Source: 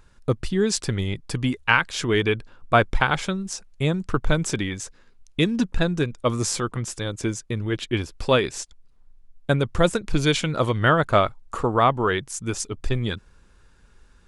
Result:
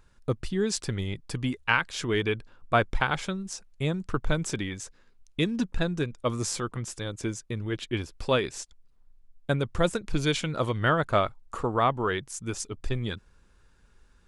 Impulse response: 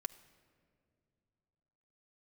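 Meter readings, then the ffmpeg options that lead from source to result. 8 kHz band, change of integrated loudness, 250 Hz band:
-5.5 dB, -5.5 dB, -5.5 dB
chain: -af "aeval=exprs='0.891*(cos(1*acos(clip(val(0)/0.891,-1,1)))-cos(1*PI/2))+0.0282*(cos(2*acos(clip(val(0)/0.891,-1,1)))-cos(2*PI/2))':c=same,volume=0.531"

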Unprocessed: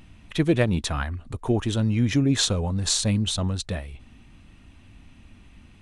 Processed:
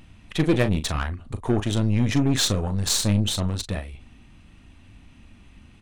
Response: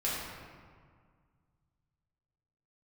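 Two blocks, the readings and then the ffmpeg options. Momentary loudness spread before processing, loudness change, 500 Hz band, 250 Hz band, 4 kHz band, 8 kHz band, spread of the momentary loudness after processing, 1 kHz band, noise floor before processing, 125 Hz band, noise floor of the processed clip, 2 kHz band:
11 LU, +0.5 dB, 0.0 dB, +0.5 dB, +0.5 dB, +0.5 dB, 11 LU, +1.5 dB, -52 dBFS, +1.0 dB, -51 dBFS, +0.5 dB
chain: -filter_complex "[0:a]asplit=2[s0][s1];[s1]adelay=39,volume=0.299[s2];[s0][s2]amix=inputs=2:normalize=0,aeval=exprs='0.398*(cos(1*acos(clip(val(0)/0.398,-1,1)))-cos(1*PI/2))+0.0316*(cos(8*acos(clip(val(0)/0.398,-1,1)))-cos(8*PI/2))':c=same"

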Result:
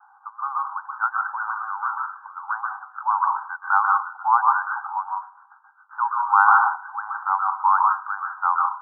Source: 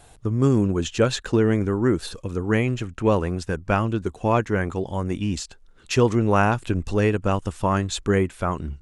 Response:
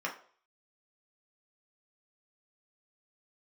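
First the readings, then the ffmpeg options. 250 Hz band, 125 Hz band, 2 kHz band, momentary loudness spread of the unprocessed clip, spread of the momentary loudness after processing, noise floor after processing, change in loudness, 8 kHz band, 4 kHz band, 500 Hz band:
under -40 dB, under -40 dB, +4.5 dB, 8 LU, 13 LU, -54 dBFS, +0.5 dB, under -40 dB, under -40 dB, under -30 dB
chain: -filter_complex "[0:a]asuperpass=centerf=1100:order=20:qfactor=1.5,asplit=2[s0][s1];[1:a]atrim=start_sample=2205,adelay=126[s2];[s1][s2]afir=irnorm=-1:irlink=0,volume=0.473[s3];[s0][s3]amix=inputs=2:normalize=0,volume=2.51"

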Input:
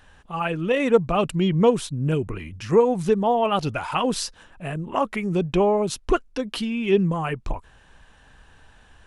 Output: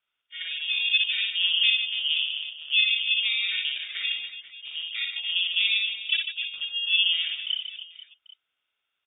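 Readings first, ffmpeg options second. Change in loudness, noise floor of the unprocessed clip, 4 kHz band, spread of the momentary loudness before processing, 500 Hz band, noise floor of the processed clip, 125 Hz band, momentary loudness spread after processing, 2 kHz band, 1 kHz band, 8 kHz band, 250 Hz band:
-1.0 dB, -54 dBFS, +14.5 dB, 13 LU, under -40 dB, -82 dBFS, under -40 dB, 14 LU, +7.5 dB, under -30 dB, under -40 dB, under -40 dB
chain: -filter_complex "[0:a]afwtdn=0.0562,acrossover=split=140|930[s0][s1][s2];[s0]acrusher=bits=3:dc=4:mix=0:aa=0.000001[s3];[s3][s1][s2]amix=inputs=3:normalize=0,equalizer=f=1500:w=0.48:g=-11,asplit=2[s4][s5];[s5]aecho=0:1:60|150|285|487.5|791.2:0.631|0.398|0.251|0.158|0.1[s6];[s4][s6]amix=inputs=2:normalize=0,aeval=exprs='val(0)*sin(2*PI*660*n/s)':c=same,lowpass=f=3100:t=q:w=0.5098,lowpass=f=3100:t=q:w=0.6013,lowpass=f=3100:t=q:w=0.9,lowpass=f=3100:t=q:w=2.563,afreqshift=-3700"

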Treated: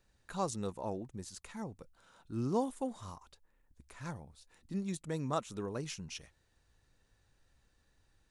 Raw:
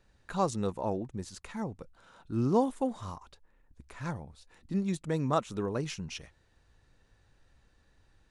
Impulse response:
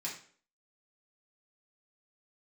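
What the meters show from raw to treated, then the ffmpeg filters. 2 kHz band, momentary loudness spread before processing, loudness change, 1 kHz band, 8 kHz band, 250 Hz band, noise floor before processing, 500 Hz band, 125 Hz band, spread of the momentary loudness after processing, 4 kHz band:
-5.5 dB, 16 LU, -6.0 dB, -6.5 dB, -0.5 dB, -6.5 dB, -68 dBFS, -6.5 dB, -6.5 dB, 15 LU, -3.5 dB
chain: -af "highshelf=f=5600:g=9.5,volume=0.473"

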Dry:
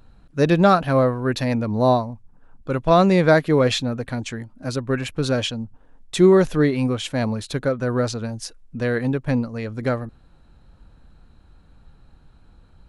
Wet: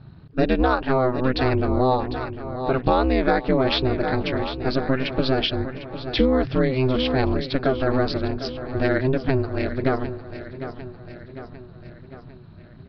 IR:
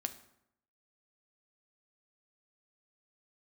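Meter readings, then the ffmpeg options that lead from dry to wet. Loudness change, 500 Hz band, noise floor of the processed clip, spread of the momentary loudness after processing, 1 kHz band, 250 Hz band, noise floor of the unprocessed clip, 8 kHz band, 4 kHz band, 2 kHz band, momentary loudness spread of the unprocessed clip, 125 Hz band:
-2.0 dB, -2.0 dB, -44 dBFS, 15 LU, -1.0 dB, -1.5 dB, -52 dBFS, under -20 dB, +1.5 dB, -0.5 dB, 16 LU, -2.5 dB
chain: -af "aresample=11025,aresample=44100,aeval=exprs='val(0)*sin(2*PI*130*n/s)':c=same,aecho=1:1:751|1502|2253|3004|3755:0.188|0.104|0.057|0.0313|0.0172,acompressor=threshold=0.0794:ratio=5,volume=2.11"

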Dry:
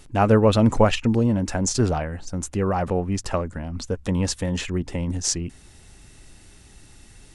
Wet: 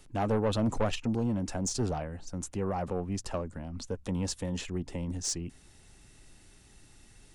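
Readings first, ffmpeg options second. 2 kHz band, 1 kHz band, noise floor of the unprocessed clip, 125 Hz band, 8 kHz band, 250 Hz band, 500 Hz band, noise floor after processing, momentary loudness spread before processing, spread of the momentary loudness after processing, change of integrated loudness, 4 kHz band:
-12.0 dB, -10.5 dB, -50 dBFS, -10.5 dB, -8.5 dB, -10.0 dB, -10.5 dB, -58 dBFS, 12 LU, 9 LU, -10.0 dB, -9.0 dB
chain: -filter_complex "[0:a]equalizer=f=65:t=o:w=0.92:g=-3.5,acrossover=split=210|1400|2300[s0][s1][s2][s3];[s2]acompressor=threshold=0.00158:ratio=6[s4];[s0][s1][s4][s3]amix=inputs=4:normalize=0,asoftclip=type=tanh:threshold=0.2,volume=0.422"

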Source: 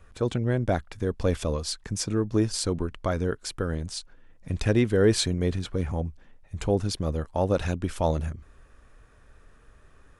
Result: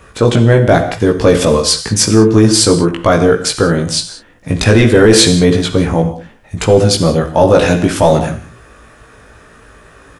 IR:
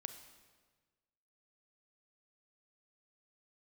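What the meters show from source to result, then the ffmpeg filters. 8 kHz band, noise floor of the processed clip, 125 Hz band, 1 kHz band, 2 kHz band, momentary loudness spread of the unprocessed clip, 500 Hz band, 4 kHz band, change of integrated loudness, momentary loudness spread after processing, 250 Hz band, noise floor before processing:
+19.0 dB, -43 dBFS, +14.5 dB, +17.5 dB, +18.5 dB, 10 LU, +17.0 dB, +19.0 dB, +16.5 dB, 10 LU, +16.5 dB, -55 dBFS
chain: -filter_complex "[0:a]highpass=f=150:p=1,asplit=2[s0][s1];[s1]adelay=18,volume=0.708[s2];[s0][s2]amix=inputs=2:normalize=0[s3];[1:a]atrim=start_sample=2205,afade=t=out:st=0.25:d=0.01,atrim=end_sample=11466[s4];[s3][s4]afir=irnorm=-1:irlink=0,apsyclip=14.1,volume=0.841"

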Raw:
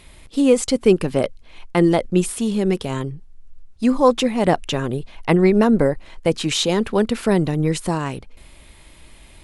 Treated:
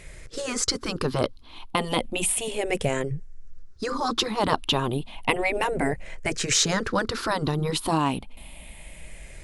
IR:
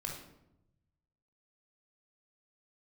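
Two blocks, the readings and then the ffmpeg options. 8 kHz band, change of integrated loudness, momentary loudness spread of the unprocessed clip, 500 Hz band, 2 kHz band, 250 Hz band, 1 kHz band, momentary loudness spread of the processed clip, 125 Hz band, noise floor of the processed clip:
+3.0 dB, -6.5 dB, 11 LU, -9.5 dB, +0.5 dB, -11.5 dB, -2.0 dB, 18 LU, -7.5 dB, -45 dBFS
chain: -af "afftfilt=real='re*pow(10,11/40*sin(2*PI*(0.53*log(max(b,1)*sr/1024/100)/log(2)-(-0.32)*(pts-256)/sr)))':imag='im*pow(10,11/40*sin(2*PI*(0.53*log(max(b,1)*sr/1024/100)/log(2)-(-0.32)*(pts-256)/sr)))':win_size=1024:overlap=0.75,afftfilt=real='re*lt(hypot(re,im),0.708)':imag='im*lt(hypot(re,im),0.708)':win_size=1024:overlap=0.75,aeval=exprs='0.531*(cos(1*acos(clip(val(0)/0.531,-1,1)))-cos(1*PI/2))+0.00841*(cos(4*acos(clip(val(0)/0.531,-1,1)))-cos(4*PI/2))':c=same"

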